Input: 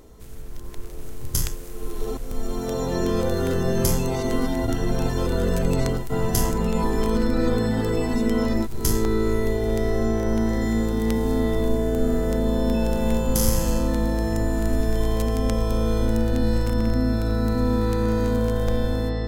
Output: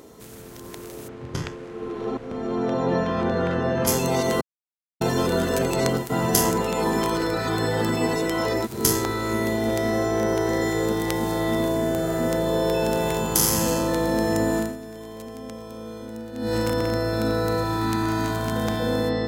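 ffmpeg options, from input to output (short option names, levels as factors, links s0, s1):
-filter_complex "[0:a]asplit=3[s0][s1][s2];[s0]afade=t=out:st=1.07:d=0.02[s3];[s1]lowpass=2400,afade=t=in:st=1.07:d=0.02,afade=t=out:st=3.86:d=0.02[s4];[s2]afade=t=in:st=3.86:d=0.02[s5];[s3][s4][s5]amix=inputs=3:normalize=0,asplit=5[s6][s7][s8][s9][s10];[s6]atrim=end=4.41,asetpts=PTS-STARTPTS,afade=t=out:st=4.406:d=0.004:c=hsin[s11];[s7]atrim=start=4.41:end=5.01,asetpts=PTS-STARTPTS,volume=0[s12];[s8]atrim=start=5.01:end=14.81,asetpts=PTS-STARTPTS,afade=t=in:d=0.004:c=hsin,afade=t=out:st=9.57:d=0.23:c=qua:silence=0.158489[s13];[s9]atrim=start=14.81:end=16.31,asetpts=PTS-STARTPTS,volume=0.158[s14];[s10]atrim=start=16.31,asetpts=PTS-STARTPTS,afade=t=in:d=0.23:c=qua:silence=0.158489[s15];[s11][s12][s13][s14][s15]concat=n=5:v=0:a=1,highpass=160,afftfilt=real='re*lt(hypot(re,im),0.355)':imag='im*lt(hypot(re,im),0.355)':win_size=1024:overlap=0.75,volume=1.88"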